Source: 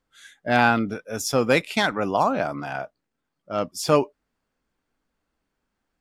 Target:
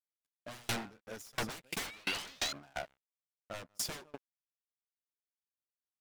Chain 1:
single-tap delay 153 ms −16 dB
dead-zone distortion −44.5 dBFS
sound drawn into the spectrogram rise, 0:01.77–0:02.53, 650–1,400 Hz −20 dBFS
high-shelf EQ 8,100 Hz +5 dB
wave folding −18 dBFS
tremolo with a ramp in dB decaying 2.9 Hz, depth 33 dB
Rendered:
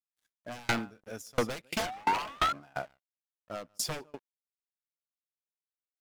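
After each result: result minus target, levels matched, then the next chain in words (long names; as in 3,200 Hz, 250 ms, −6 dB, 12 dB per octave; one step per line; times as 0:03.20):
wave folding: distortion −19 dB; dead-zone distortion: distortion −6 dB
single-tap delay 153 ms −16 dB
dead-zone distortion −44.5 dBFS
sound drawn into the spectrogram rise, 0:01.77–0:02.53, 650–1,400 Hz −20 dBFS
high-shelf EQ 8,100 Hz +5 dB
wave folding −25 dBFS
tremolo with a ramp in dB decaying 2.9 Hz, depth 33 dB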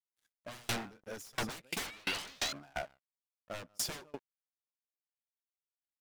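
dead-zone distortion: distortion −6 dB
single-tap delay 153 ms −16 dB
dead-zone distortion −38 dBFS
sound drawn into the spectrogram rise, 0:01.77–0:02.53, 650–1,400 Hz −20 dBFS
high-shelf EQ 8,100 Hz +5 dB
wave folding −25 dBFS
tremolo with a ramp in dB decaying 2.9 Hz, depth 33 dB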